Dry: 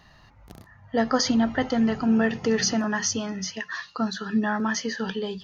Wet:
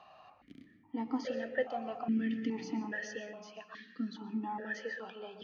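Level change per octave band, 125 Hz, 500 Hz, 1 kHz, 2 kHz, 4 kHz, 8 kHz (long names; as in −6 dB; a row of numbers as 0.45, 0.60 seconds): −15.0 dB, −11.5 dB, −11.5 dB, −11.5 dB, −21.0 dB, can't be measured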